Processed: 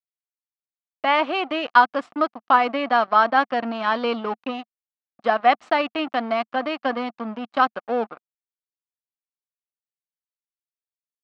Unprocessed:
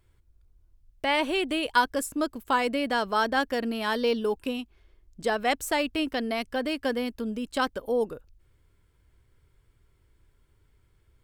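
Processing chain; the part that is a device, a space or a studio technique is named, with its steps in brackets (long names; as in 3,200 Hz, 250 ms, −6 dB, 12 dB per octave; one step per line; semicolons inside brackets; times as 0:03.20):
blown loudspeaker (dead-zone distortion −38 dBFS; loudspeaker in its box 210–4,000 Hz, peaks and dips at 220 Hz +3 dB, 420 Hz −7 dB, 720 Hz +9 dB, 1,200 Hz +10 dB, 3,600 Hz −4 dB)
level +4.5 dB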